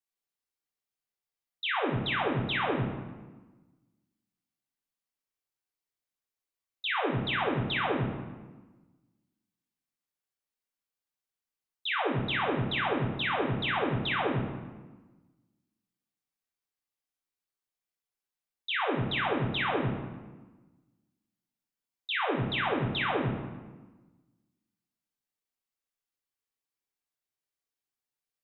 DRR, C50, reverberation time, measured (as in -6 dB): -3.0 dB, 3.5 dB, 1.3 s